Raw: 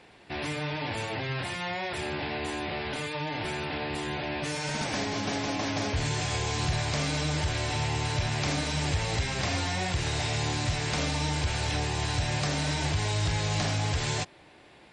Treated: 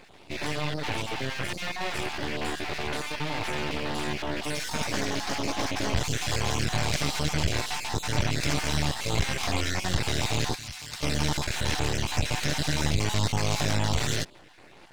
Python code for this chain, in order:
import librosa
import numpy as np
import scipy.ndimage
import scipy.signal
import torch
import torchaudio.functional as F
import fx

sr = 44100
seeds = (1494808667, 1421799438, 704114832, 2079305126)

y = fx.spec_dropout(x, sr, seeds[0], share_pct=26)
y = np.maximum(y, 0.0)
y = fx.tone_stack(y, sr, knobs='5-5-5', at=(10.54, 11.02), fade=0.02)
y = F.gain(torch.from_numpy(y), 7.0).numpy()